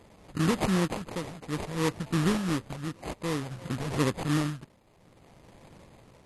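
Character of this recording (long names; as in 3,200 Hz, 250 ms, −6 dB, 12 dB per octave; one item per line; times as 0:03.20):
phaser sweep stages 2, 2.8 Hz, lowest notch 330–2,200 Hz
aliases and images of a low sample rate 1,500 Hz, jitter 20%
tremolo triangle 0.57 Hz, depth 75%
MP2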